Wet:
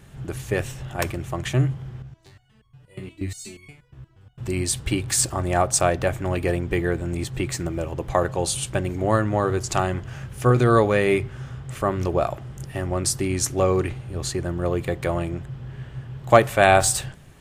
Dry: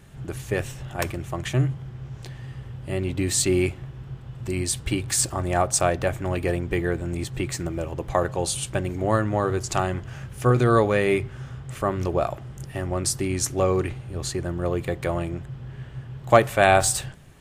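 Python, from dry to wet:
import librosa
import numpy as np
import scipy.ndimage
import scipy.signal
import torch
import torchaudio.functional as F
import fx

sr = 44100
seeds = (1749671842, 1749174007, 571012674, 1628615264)

y = fx.resonator_held(x, sr, hz=8.4, low_hz=65.0, high_hz=1100.0, at=(2.02, 4.38))
y = y * librosa.db_to_amplitude(1.5)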